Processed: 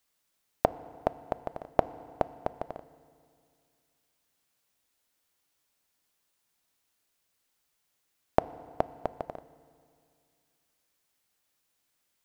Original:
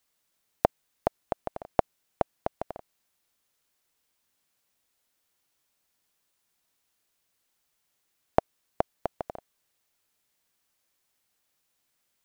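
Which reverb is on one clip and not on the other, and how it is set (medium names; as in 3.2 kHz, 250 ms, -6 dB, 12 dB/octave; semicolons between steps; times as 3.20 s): FDN reverb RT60 2.3 s, low-frequency decay 1.1×, high-frequency decay 0.85×, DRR 15 dB; trim -1 dB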